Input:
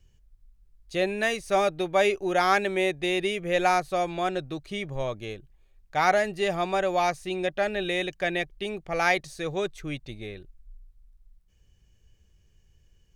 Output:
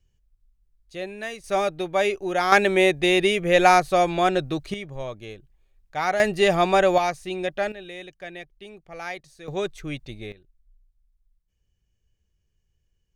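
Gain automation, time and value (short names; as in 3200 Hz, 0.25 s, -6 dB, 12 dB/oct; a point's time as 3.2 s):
-7 dB
from 1.44 s 0 dB
from 2.52 s +7 dB
from 4.74 s -2.5 dB
from 6.2 s +7.5 dB
from 6.98 s +0.5 dB
from 7.72 s -10.5 dB
from 9.48 s +1.5 dB
from 10.32 s -11 dB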